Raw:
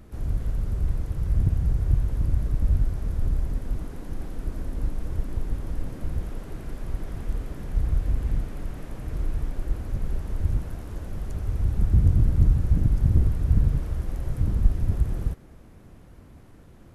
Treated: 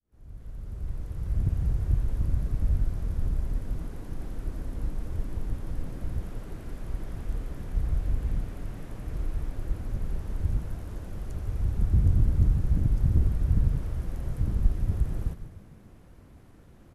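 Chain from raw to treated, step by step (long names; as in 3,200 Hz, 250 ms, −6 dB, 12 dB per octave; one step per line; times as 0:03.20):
fade in at the beginning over 1.62 s
echo with shifted repeats 147 ms, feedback 44%, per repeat −64 Hz, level −11.5 dB
level −3.5 dB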